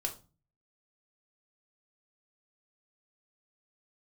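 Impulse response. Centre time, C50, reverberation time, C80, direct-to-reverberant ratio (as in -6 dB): 12 ms, 12.5 dB, 0.35 s, 19.0 dB, 1.5 dB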